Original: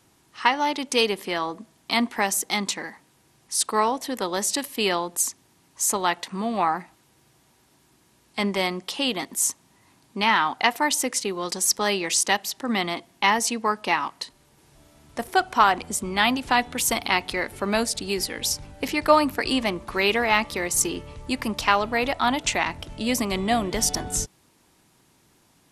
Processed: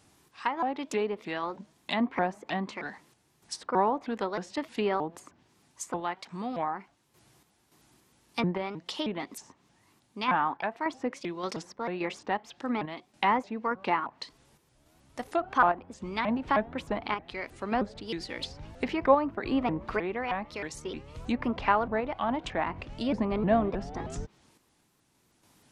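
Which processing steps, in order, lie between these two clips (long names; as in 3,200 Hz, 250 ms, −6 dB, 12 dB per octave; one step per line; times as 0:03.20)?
sample-and-hold tremolo, depth 70%
treble cut that deepens with the level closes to 1,300 Hz, closed at −24 dBFS
pitch modulation by a square or saw wave saw up 3.2 Hz, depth 250 cents
level −1 dB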